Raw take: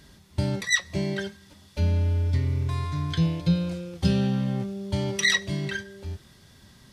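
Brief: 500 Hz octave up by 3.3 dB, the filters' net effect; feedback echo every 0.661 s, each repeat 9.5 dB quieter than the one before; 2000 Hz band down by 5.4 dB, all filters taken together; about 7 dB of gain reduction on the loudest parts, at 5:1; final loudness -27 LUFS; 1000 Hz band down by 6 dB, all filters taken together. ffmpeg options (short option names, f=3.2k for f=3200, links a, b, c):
-af "equalizer=f=500:t=o:g=6.5,equalizer=f=1k:t=o:g=-8.5,equalizer=f=2k:t=o:g=-4,acompressor=threshold=-24dB:ratio=5,aecho=1:1:661|1322|1983|2644:0.335|0.111|0.0365|0.012,volume=3dB"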